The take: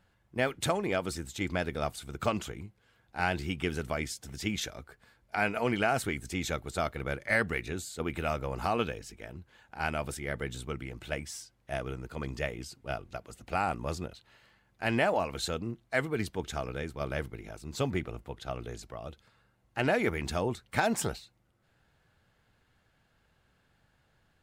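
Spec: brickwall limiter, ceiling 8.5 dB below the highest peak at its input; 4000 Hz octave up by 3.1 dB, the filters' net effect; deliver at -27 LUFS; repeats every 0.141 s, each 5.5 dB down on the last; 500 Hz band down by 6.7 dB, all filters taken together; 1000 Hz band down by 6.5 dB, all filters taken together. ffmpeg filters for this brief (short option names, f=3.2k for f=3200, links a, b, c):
-af "equalizer=f=500:t=o:g=-6.5,equalizer=f=1k:t=o:g=-7,equalizer=f=4k:t=o:g=4.5,alimiter=limit=-23dB:level=0:latency=1,aecho=1:1:141|282|423|564|705|846|987:0.531|0.281|0.149|0.079|0.0419|0.0222|0.0118,volume=9dB"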